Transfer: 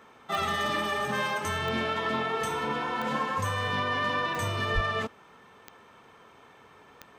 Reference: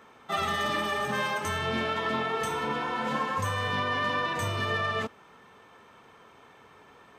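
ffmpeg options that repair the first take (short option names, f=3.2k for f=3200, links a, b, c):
-filter_complex "[0:a]adeclick=t=4,asplit=3[a][b][c];[a]afade=t=out:st=4.74:d=0.02[d];[b]highpass=f=140:w=0.5412,highpass=f=140:w=1.3066,afade=t=in:st=4.74:d=0.02,afade=t=out:st=4.86:d=0.02[e];[c]afade=t=in:st=4.86:d=0.02[f];[d][e][f]amix=inputs=3:normalize=0"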